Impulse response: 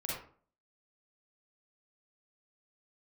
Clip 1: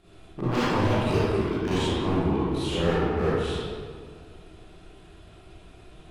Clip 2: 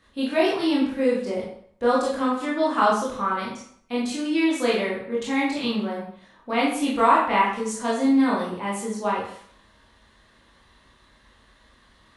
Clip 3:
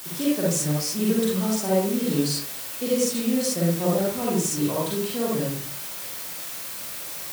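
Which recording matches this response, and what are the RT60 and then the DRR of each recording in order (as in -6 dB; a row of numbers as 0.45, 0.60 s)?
3; 2.0, 0.60, 0.45 s; -11.5, -6.0, -5.5 dB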